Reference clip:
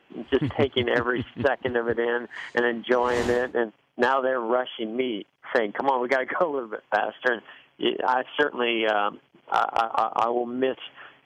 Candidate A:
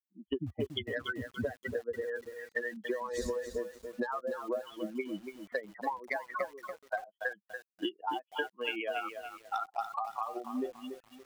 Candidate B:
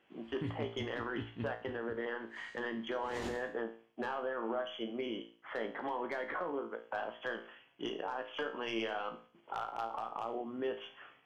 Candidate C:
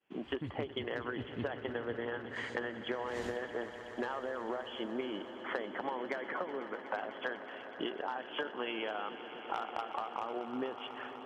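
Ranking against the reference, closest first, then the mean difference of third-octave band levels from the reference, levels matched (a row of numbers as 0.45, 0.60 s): B, C, A; 4.0, 6.5, 11.0 dB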